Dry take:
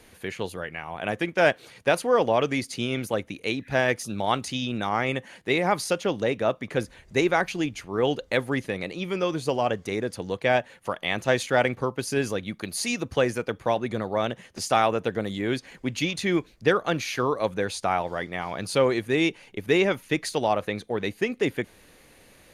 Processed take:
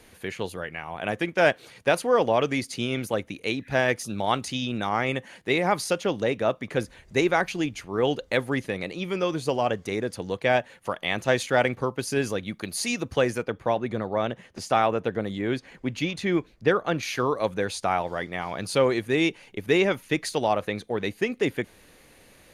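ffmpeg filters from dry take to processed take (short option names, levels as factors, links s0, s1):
-filter_complex "[0:a]asettb=1/sr,asplit=3[s0][s1][s2];[s0]atrim=end=13.434[s3];[s1]atrim=start=13.43:end=17.03,asetpts=PTS-STARTPTS,afade=t=in:d=0.004:c=qsin,afade=t=out:st=3.596:d=0.004:c=qsin,highshelf=f=3800:g=-8.5[s4];[s2]atrim=start=17.026[s5];[s3][s4]acrossfade=d=0.004:c1=hsin:c2=qsin[s6];[s6][s5]acrossfade=d=0.004:c1=qsin:c2=hsin"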